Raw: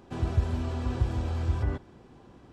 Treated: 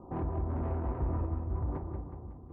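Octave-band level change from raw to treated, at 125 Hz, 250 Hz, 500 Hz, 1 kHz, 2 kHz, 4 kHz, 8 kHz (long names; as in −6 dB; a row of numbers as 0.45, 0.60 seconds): −5.0 dB, −2.5 dB, −1.0 dB, −0.5 dB, −12.0 dB, below −25 dB, can't be measured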